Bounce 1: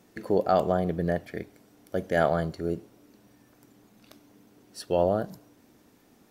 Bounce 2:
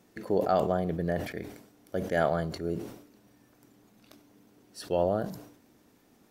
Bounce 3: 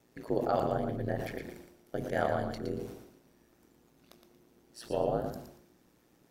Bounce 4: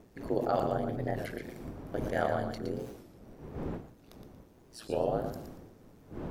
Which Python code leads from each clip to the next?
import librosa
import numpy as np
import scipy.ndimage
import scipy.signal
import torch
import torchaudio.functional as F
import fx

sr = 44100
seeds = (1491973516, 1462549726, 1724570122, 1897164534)

y1 = fx.sustainer(x, sr, db_per_s=80.0)
y1 = y1 * 10.0 ** (-3.0 / 20.0)
y2 = y1 * np.sin(2.0 * np.pi * 58.0 * np.arange(len(y1)) / sr)
y2 = fx.echo_feedback(y2, sr, ms=116, feedback_pct=27, wet_db=-6.5)
y2 = y2 * 10.0 ** (-1.5 / 20.0)
y3 = fx.dmg_wind(y2, sr, seeds[0], corner_hz=340.0, level_db=-46.0)
y3 = fx.record_warp(y3, sr, rpm=33.33, depth_cents=160.0)